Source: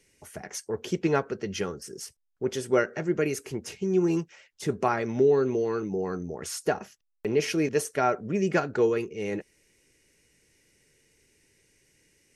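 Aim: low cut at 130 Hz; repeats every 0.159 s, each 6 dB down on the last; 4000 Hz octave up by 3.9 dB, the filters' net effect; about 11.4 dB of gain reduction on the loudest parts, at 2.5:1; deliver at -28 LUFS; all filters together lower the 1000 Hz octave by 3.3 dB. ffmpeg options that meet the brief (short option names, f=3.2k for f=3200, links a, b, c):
-af "highpass=130,equalizer=f=1k:t=o:g=-5.5,equalizer=f=4k:t=o:g=6,acompressor=threshold=-36dB:ratio=2.5,aecho=1:1:159|318|477|636|795|954:0.501|0.251|0.125|0.0626|0.0313|0.0157,volume=8dB"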